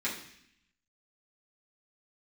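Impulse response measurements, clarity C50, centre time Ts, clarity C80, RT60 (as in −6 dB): 6.5 dB, 30 ms, 10.0 dB, 0.70 s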